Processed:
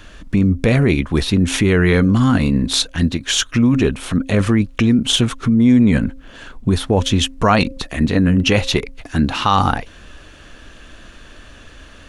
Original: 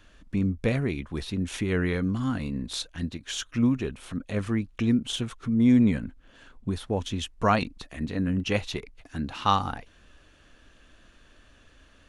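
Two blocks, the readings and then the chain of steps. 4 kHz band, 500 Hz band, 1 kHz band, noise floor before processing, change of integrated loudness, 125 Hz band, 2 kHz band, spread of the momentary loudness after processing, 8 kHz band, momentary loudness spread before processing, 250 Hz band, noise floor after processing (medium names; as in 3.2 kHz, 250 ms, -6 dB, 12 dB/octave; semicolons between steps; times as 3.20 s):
+15.0 dB, +11.5 dB, +9.0 dB, -57 dBFS, +11.5 dB, +12.5 dB, +13.0 dB, 7 LU, +15.5 dB, 11 LU, +10.5 dB, -42 dBFS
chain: de-hum 267 Hz, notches 2; in parallel at +3 dB: compressor with a negative ratio -28 dBFS, ratio -1; on the sum: loudness maximiser +7 dB; trim -1 dB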